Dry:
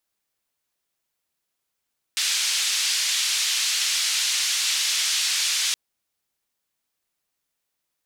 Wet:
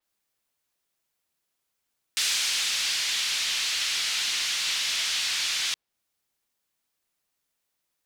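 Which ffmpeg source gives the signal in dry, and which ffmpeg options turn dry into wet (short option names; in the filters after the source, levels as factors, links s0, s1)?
-f lavfi -i "anoisesrc=c=white:d=3.57:r=44100:seed=1,highpass=f=2800,lowpass=f=5800,volume=-10.3dB"
-af "asoftclip=type=tanh:threshold=0.141,adynamicequalizer=threshold=0.01:dfrequency=5500:dqfactor=0.7:tfrequency=5500:tqfactor=0.7:attack=5:release=100:ratio=0.375:range=4:mode=cutabove:tftype=highshelf"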